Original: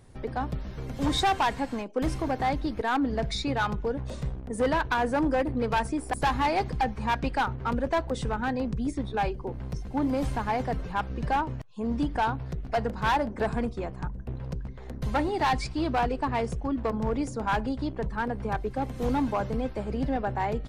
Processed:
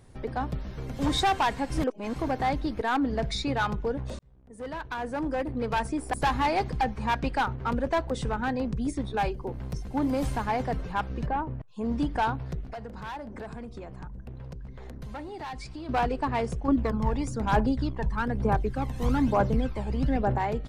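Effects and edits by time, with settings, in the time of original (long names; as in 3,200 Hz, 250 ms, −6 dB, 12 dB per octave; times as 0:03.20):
0:01.70–0:02.16: reverse
0:04.19–0:06.06: fade in
0:08.81–0:10.46: high-shelf EQ 7,700 Hz +7 dB
0:11.26–0:11.68: head-to-tape spacing loss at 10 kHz 40 dB
0:12.64–0:15.89: downward compressor, threshold −36 dBFS
0:16.68–0:20.38: phase shifter 1.1 Hz, delay 1.2 ms, feedback 55%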